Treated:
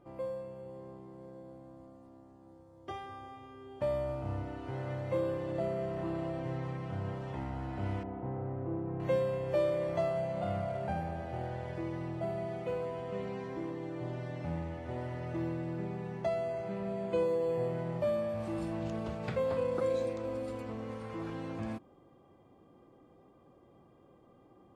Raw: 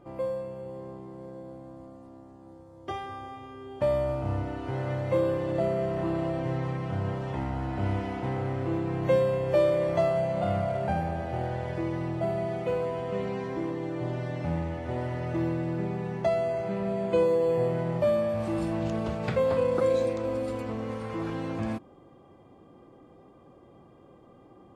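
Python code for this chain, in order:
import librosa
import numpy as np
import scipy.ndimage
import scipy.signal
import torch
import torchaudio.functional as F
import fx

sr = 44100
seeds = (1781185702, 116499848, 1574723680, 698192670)

y = fx.lowpass(x, sr, hz=1000.0, slope=12, at=(8.03, 9.0))
y = y * librosa.db_to_amplitude(-7.0)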